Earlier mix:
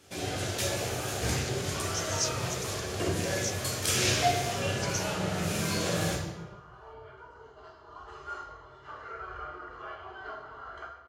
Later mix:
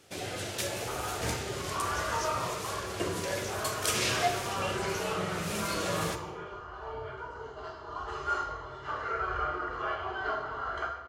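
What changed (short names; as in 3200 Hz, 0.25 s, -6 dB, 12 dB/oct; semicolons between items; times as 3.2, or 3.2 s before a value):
speech -11.5 dB; first sound: send -9.5 dB; second sound +8.5 dB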